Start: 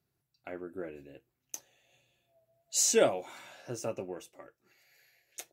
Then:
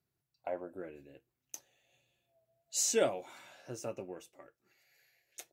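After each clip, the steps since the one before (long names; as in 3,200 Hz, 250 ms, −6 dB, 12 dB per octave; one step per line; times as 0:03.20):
gain on a spectral selection 0:00.39–0:00.77, 470–1,100 Hz +12 dB
level −4.5 dB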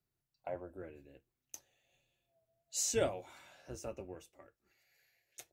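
sub-octave generator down 2 octaves, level −4 dB
level −3.5 dB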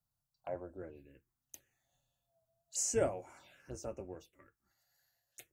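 phaser swept by the level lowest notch 370 Hz, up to 3,700 Hz, full sweep at −42 dBFS
level +1 dB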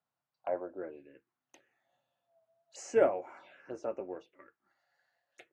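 band-pass filter 320–2,200 Hz
level +7.5 dB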